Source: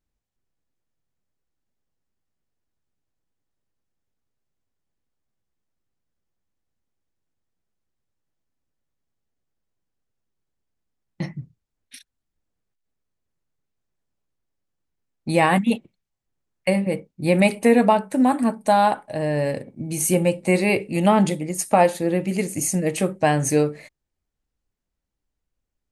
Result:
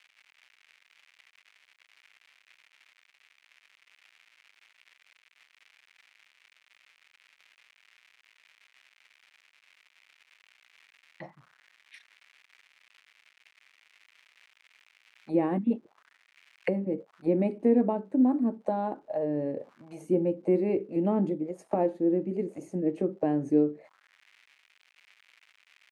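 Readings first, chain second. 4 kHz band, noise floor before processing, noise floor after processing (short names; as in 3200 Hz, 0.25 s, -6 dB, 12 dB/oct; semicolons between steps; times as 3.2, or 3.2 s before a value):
under -20 dB, -82 dBFS, -69 dBFS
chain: crackle 240/s -34 dBFS; auto-wah 320–2400 Hz, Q 2.7, down, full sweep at -19.5 dBFS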